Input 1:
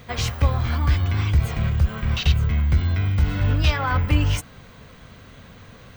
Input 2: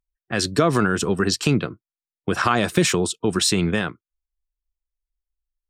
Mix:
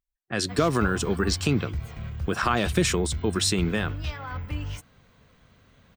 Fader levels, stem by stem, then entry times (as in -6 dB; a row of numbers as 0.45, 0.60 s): -13.0, -4.5 dB; 0.40, 0.00 s